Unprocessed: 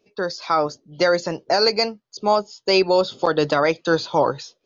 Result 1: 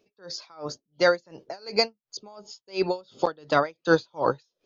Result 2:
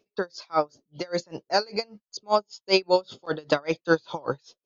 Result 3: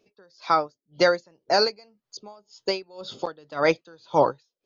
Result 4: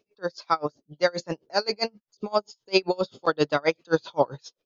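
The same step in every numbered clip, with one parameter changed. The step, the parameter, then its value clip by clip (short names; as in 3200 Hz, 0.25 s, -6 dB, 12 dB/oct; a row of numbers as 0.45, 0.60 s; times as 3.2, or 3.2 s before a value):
dB-linear tremolo, rate: 2.8, 5.1, 1.9, 7.6 Hz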